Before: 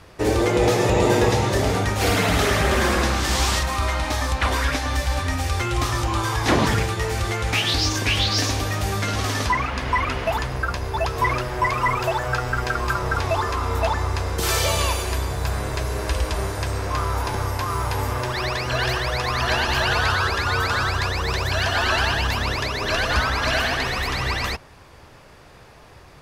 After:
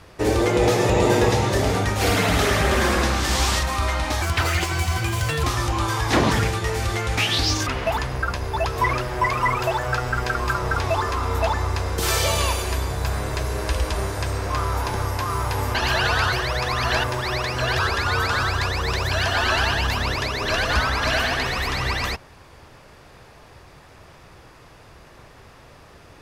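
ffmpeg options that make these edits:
-filter_complex "[0:a]asplit=8[a][b][c][d][e][f][g][h];[a]atrim=end=4.224[i];[b]atrim=start=4.22:end=5.79,asetpts=PTS-STARTPTS,asetrate=56889,aresample=44100,atrim=end_sample=53672,asetpts=PTS-STARTPTS[j];[c]atrim=start=5.786:end=8.022[k];[d]atrim=start=10.068:end=18.152[l];[e]atrim=start=19.608:end=20.192[m];[f]atrim=start=18.898:end=19.612[n];[g]atrim=start=18.148:end=18.902[o];[h]atrim=start=20.188[p];[i][j]acrossfade=d=0.004:c1=hsin:c2=hsin[q];[q][k]acrossfade=d=0.004:c1=hsin:c2=hsin[r];[r][l]acrossfade=d=0.004:c1=hsin:c2=hsin[s];[s][m]acrossfade=d=0.004:c1=hsin:c2=hsin[t];[t][n]acrossfade=d=0.004:c1=hsin:c2=hsin[u];[u][o]acrossfade=d=0.004:c1=hsin:c2=hsin[v];[v][p]acrossfade=d=0.004:c1=hsin:c2=hsin"

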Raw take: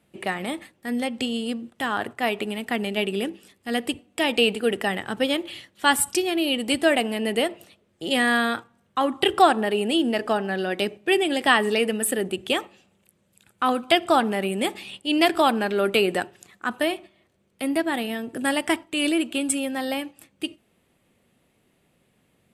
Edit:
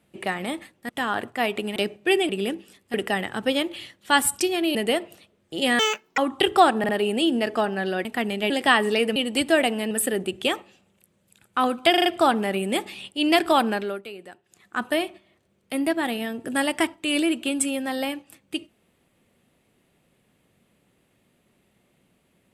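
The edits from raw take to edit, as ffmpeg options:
-filter_complex "[0:a]asplit=20[a][b][c][d][e][f][g][h][i][j][k][l][m][n][o][p][q][r][s][t];[a]atrim=end=0.892[u];[b]atrim=start=1.718:end=2.592[v];[c]atrim=start=10.768:end=11.302[w];[d]atrim=start=3.038:end=3.692[x];[e]atrim=start=4.678:end=6.492[y];[f]atrim=start=7.238:end=8.284[z];[g]atrim=start=8.28:end=9,asetpts=PTS-STARTPTS,asetrate=81585,aresample=44100,atrim=end_sample=17163,asetpts=PTS-STARTPTS[aa];[h]atrim=start=8.996:end=9.662[ab];[i]atrim=start=9.608:end=9.662[ac];[j]atrim=start=9.608:end=10.772[ad];[k]atrim=start=2.588:end=3.042[ae];[l]atrim=start=11.298:end=11.962[af];[m]atrim=start=6.488:end=7.242[ag];[n]atrim=start=11.958:end=13.992[ah];[o]atrim=start=13.948:end=13.992[ai];[p]atrim=start=13.948:end=13.992[aj];[q]atrim=start=13.948:end=13.992[ak];[r]atrim=start=13.948:end=15.91,asetpts=PTS-STARTPTS,afade=t=out:st=1.652:d=0.31:silence=0.11885[al];[s]atrim=start=15.91:end=16.34,asetpts=PTS-STARTPTS,volume=-18.5dB[am];[t]atrim=start=16.34,asetpts=PTS-STARTPTS,afade=t=in:d=0.31:silence=0.11885[an];[u][v]acrossfade=d=0.004:c1=hsin:c2=hsin[ao];[ao][w]acrossfade=d=0.004:c1=hsin:c2=hsin[ap];[ap][x]acrossfade=d=0.004:c1=hsin:c2=hsin[aq];[aq][y]acrossfade=d=0.004:c1=hsin:c2=hsin[ar];[ar][z]acrossfade=d=0.004:c1=hsin:c2=hsin[as];[as][aa]acrossfade=d=0.004:c1=hsin:c2=hsin[at];[at][ab]acrossfade=d=0.004:c1=hsin:c2=hsin[au];[au][ac]acrossfade=d=0.004:c1=hsin:c2=hsin[av];[av][ad]acrossfade=d=0.004:c1=hsin:c2=hsin[aw];[aw][ae]acrossfade=d=0.004:c1=hsin:c2=hsin[ax];[ax][af]acrossfade=d=0.004:c1=hsin:c2=hsin[ay];[ay][ag]acrossfade=d=0.004:c1=hsin:c2=hsin[az];[az][ah]acrossfade=d=0.004:c1=hsin:c2=hsin[ba];[ba][ai]acrossfade=d=0.004:c1=hsin:c2=hsin[bb];[bb][aj]acrossfade=d=0.004:c1=hsin:c2=hsin[bc];[bc][ak]acrossfade=d=0.004:c1=hsin:c2=hsin[bd];[al][am][an]concat=n=3:v=0:a=1[be];[bd][be]acrossfade=d=0.004:c1=hsin:c2=hsin"

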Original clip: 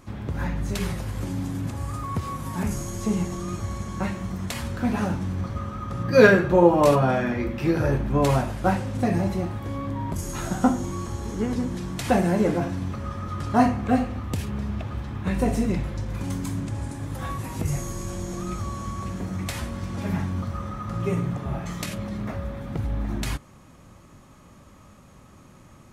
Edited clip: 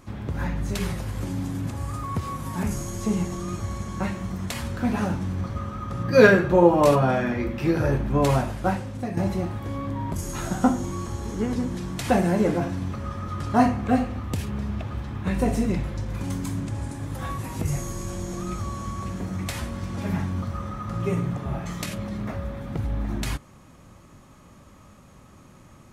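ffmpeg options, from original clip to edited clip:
-filter_complex "[0:a]asplit=2[a][b];[a]atrim=end=9.17,asetpts=PTS-STARTPTS,afade=t=out:st=8.46:d=0.71:silence=0.334965[c];[b]atrim=start=9.17,asetpts=PTS-STARTPTS,afade=t=in:d=0.004:c=hsin:silence=0.334965[d];[c][d]concat=n=2:v=0:a=1"

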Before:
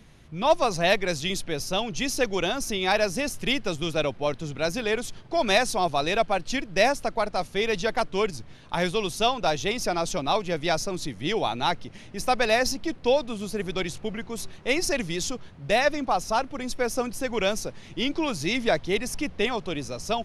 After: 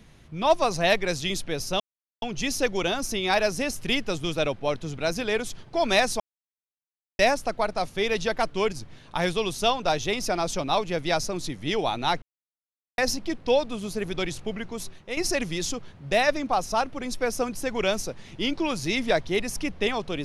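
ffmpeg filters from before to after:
-filter_complex "[0:a]asplit=7[a][b][c][d][e][f][g];[a]atrim=end=1.8,asetpts=PTS-STARTPTS,afade=t=out:st=1.796:d=0.004:c=hsin,apad=pad_dur=0.42[h];[b]atrim=start=1.8:end=5.78,asetpts=PTS-STARTPTS,afade=t=in:d=0.004:c=hsin,afade=t=out:st=3.976:d=0.004:c=hsin[i];[c]atrim=start=5.78:end=6.77,asetpts=PTS-STARTPTS,volume=0[j];[d]atrim=start=6.77:end=11.8,asetpts=PTS-STARTPTS,afade=t=in:d=0.004:c=hsin,afade=t=out:st=5.026:d=0.004:c=hsin[k];[e]atrim=start=11.8:end=12.56,asetpts=PTS-STARTPTS,volume=0[l];[f]atrim=start=12.56:end=14.75,asetpts=PTS-STARTPTS,afade=t=in:d=0.004:c=hsin,afade=t=out:st=1.74:d=0.45:silence=0.316228[m];[g]atrim=start=14.75,asetpts=PTS-STARTPTS,afade=t=in:d=0.004:c=hsin:silence=0.316228[n];[h][i][j][k][l][m][n]concat=n=7:v=0:a=1"

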